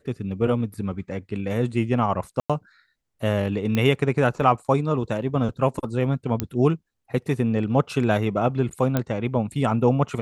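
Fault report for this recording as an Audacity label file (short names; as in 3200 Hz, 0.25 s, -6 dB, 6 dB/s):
2.400000	2.500000	gap 96 ms
3.750000	3.750000	pop -11 dBFS
6.400000	6.400000	pop -9 dBFS
8.970000	8.970000	pop -9 dBFS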